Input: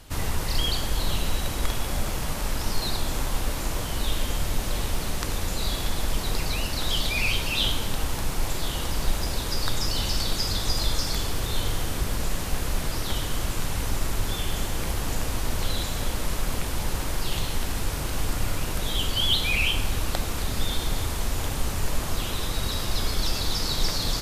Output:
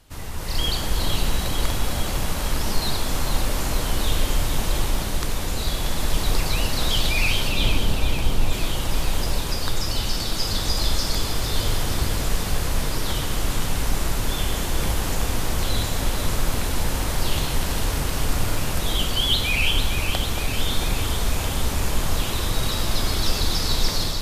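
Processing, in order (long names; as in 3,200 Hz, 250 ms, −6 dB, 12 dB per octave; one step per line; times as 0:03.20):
0:07.49–0:08.53: tilt shelving filter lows +4.5 dB, about 810 Hz
automatic gain control gain up to 11.5 dB
on a send: delay that swaps between a low-pass and a high-pass 227 ms, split 1,100 Hz, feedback 82%, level −6.5 dB
on the sum: level −7 dB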